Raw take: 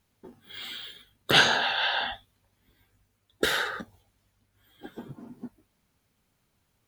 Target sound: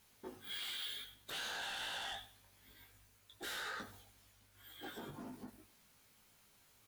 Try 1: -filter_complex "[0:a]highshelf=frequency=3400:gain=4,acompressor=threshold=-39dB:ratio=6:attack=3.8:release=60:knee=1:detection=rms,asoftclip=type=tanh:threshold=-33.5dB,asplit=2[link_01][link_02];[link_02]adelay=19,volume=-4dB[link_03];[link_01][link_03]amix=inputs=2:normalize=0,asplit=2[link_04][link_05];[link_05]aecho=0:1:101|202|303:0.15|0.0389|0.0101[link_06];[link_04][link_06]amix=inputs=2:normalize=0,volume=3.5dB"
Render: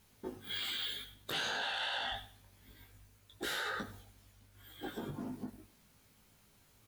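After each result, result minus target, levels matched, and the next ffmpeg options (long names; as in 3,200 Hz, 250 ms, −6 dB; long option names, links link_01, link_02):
soft clipping: distortion −12 dB; 500 Hz band +2.0 dB
-filter_complex "[0:a]highshelf=frequency=3400:gain=4,acompressor=threshold=-39dB:ratio=6:attack=3.8:release=60:knee=1:detection=rms,asoftclip=type=tanh:threshold=-45.5dB,asplit=2[link_01][link_02];[link_02]adelay=19,volume=-4dB[link_03];[link_01][link_03]amix=inputs=2:normalize=0,asplit=2[link_04][link_05];[link_05]aecho=0:1:101|202|303:0.15|0.0389|0.0101[link_06];[link_04][link_06]amix=inputs=2:normalize=0,volume=3.5dB"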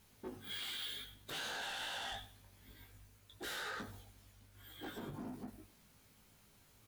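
500 Hz band +2.0 dB
-filter_complex "[0:a]highshelf=frequency=3400:gain=4,acompressor=threshold=-39dB:ratio=6:attack=3.8:release=60:knee=1:detection=rms,lowshelf=frequency=420:gain=-9,asoftclip=type=tanh:threshold=-45.5dB,asplit=2[link_01][link_02];[link_02]adelay=19,volume=-4dB[link_03];[link_01][link_03]amix=inputs=2:normalize=0,asplit=2[link_04][link_05];[link_05]aecho=0:1:101|202|303:0.15|0.0389|0.0101[link_06];[link_04][link_06]amix=inputs=2:normalize=0,volume=3.5dB"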